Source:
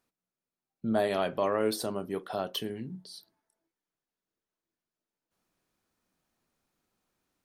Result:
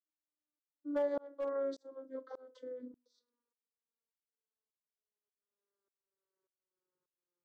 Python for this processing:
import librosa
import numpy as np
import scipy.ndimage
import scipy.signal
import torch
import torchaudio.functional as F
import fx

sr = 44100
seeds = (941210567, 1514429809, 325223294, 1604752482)

y = fx.vocoder_glide(x, sr, note=63, semitones=-10)
y = fx.peak_eq(y, sr, hz=620.0, db=6.5, octaves=0.88)
y = fx.fixed_phaser(y, sr, hz=720.0, stages=6)
y = np.clip(10.0 ** (21.0 / 20.0) * y, -1.0, 1.0) / 10.0 ** (21.0 / 20.0)
y = fx.tremolo_shape(y, sr, shape='saw_up', hz=1.7, depth_pct=100)
y = F.gain(torch.from_numpy(y), -3.5).numpy()